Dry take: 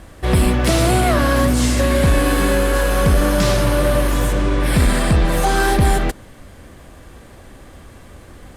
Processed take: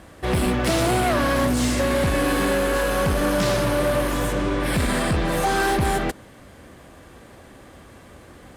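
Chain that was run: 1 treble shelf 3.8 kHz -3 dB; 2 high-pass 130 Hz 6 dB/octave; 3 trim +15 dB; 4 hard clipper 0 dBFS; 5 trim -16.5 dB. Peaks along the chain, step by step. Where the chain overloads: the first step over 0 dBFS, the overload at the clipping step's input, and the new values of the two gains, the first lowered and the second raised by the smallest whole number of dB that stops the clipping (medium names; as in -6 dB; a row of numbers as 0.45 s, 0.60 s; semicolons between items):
-7.5 dBFS, -5.5 dBFS, +9.5 dBFS, 0.0 dBFS, -16.5 dBFS; step 3, 9.5 dB; step 3 +5 dB, step 5 -6.5 dB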